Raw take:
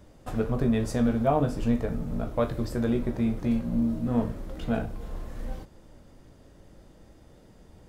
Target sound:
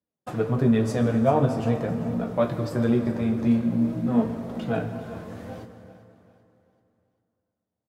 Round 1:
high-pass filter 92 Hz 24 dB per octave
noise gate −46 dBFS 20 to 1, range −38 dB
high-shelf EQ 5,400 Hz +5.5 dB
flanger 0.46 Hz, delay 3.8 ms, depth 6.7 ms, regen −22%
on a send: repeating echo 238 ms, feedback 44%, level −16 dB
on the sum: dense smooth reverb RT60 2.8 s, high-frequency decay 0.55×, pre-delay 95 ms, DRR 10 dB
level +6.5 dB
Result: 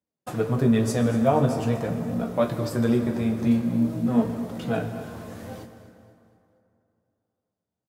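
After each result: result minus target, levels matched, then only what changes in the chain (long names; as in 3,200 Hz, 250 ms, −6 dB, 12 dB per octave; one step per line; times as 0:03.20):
echo 152 ms early; 8,000 Hz band +7.0 dB
change: repeating echo 390 ms, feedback 44%, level −16 dB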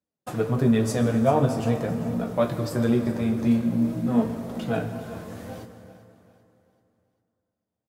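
8,000 Hz band +7.0 dB
change: high-shelf EQ 5,400 Hz −5 dB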